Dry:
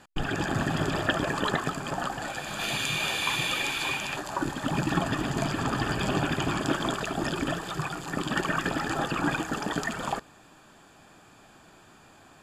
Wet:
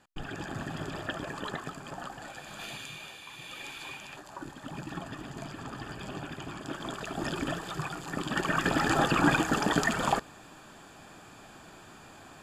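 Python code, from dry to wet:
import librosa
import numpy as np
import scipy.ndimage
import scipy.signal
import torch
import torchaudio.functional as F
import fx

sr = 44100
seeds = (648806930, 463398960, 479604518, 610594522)

y = fx.gain(x, sr, db=fx.line((2.6, -9.5), (3.28, -19.5), (3.66, -12.5), (6.6, -12.5), (7.28, -3.5), (8.3, -3.5), (8.86, 3.5)))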